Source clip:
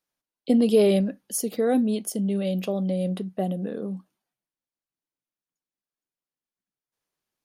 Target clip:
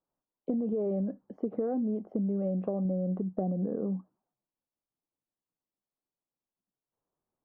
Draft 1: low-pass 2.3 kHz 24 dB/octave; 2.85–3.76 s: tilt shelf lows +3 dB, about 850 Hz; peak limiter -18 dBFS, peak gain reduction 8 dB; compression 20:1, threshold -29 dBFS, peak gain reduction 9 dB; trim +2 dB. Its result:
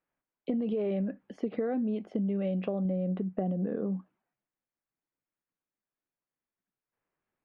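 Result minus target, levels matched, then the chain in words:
2 kHz band +15.0 dB
low-pass 1.1 kHz 24 dB/octave; 2.85–3.76 s: tilt shelf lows +3 dB, about 850 Hz; peak limiter -18 dBFS, peak gain reduction 8 dB; compression 20:1, threshold -29 dBFS, peak gain reduction 9 dB; trim +2 dB

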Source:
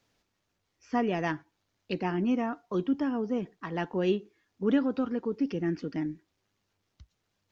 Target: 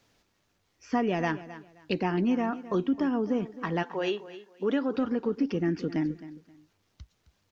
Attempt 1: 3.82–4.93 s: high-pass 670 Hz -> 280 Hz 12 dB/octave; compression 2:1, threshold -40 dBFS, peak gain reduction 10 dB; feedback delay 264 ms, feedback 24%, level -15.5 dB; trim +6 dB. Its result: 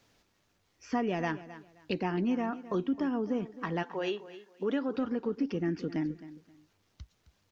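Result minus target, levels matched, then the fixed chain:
compression: peak gain reduction +3.5 dB
3.82–4.93 s: high-pass 670 Hz -> 280 Hz 12 dB/octave; compression 2:1, threshold -32.5 dBFS, peak gain reduction 6 dB; feedback delay 264 ms, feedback 24%, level -15.5 dB; trim +6 dB

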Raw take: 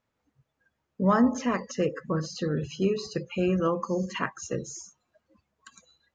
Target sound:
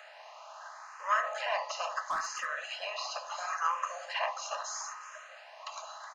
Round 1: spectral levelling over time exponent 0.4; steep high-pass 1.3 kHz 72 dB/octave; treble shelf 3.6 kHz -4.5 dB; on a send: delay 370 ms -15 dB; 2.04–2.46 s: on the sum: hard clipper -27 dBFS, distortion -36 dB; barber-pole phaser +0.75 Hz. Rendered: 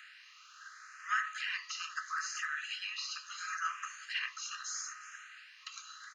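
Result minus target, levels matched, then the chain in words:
1 kHz band -5.0 dB
spectral levelling over time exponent 0.4; steep high-pass 640 Hz 72 dB/octave; treble shelf 3.6 kHz -4.5 dB; on a send: delay 370 ms -15 dB; 2.04–2.46 s: on the sum: hard clipper -27 dBFS, distortion -23 dB; barber-pole phaser +0.75 Hz

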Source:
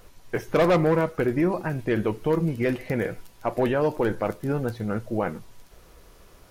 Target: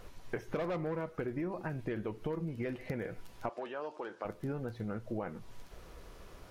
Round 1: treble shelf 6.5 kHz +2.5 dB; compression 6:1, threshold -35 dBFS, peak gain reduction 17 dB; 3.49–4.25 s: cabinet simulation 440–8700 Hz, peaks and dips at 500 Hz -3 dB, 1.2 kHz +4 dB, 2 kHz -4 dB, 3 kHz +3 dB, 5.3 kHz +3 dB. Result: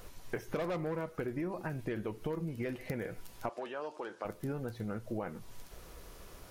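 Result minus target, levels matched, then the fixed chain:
8 kHz band +6.5 dB
treble shelf 6.5 kHz -9 dB; compression 6:1, threshold -35 dBFS, peak gain reduction 16.5 dB; 3.49–4.25 s: cabinet simulation 440–8700 Hz, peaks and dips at 500 Hz -3 dB, 1.2 kHz +4 dB, 2 kHz -4 dB, 3 kHz +3 dB, 5.3 kHz +3 dB

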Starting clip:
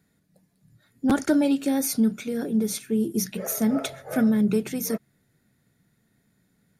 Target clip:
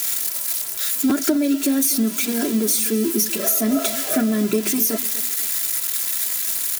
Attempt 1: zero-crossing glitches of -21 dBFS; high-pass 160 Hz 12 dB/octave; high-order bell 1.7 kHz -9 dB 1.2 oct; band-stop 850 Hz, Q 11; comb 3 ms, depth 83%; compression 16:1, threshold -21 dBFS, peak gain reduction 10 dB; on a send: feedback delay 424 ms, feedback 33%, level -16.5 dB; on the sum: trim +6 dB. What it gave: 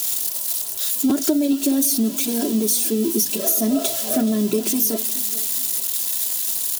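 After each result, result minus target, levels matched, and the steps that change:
echo 176 ms late; 2 kHz band -7.0 dB
change: feedback delay 248 ms, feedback 33%, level -16.5 dB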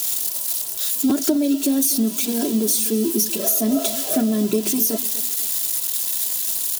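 2 kHz band -7.0 dB
remove: high-order bell 1.7 kHz -9 dB 1.2 oct

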